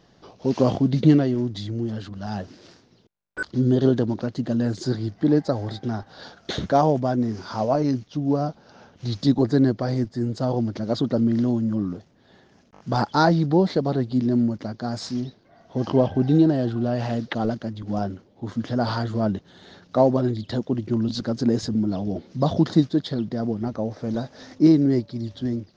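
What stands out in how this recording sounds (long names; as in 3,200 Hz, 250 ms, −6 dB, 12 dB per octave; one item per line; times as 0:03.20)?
background noise floor −57 dBFS
spectral slope −7.0 dB per octave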